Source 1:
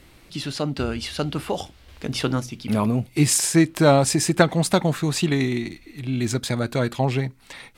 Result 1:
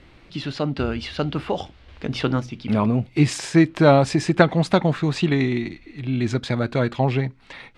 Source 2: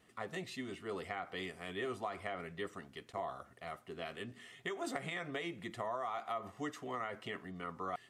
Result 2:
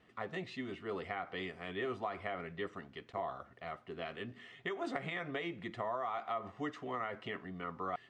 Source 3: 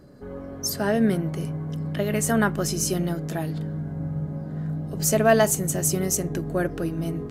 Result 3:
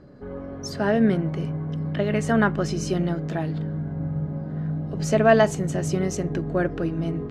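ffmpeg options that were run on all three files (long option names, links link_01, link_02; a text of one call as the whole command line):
ffmpeg -i in.wav -af "lowpass=3600,volume=1.5dB" out.wav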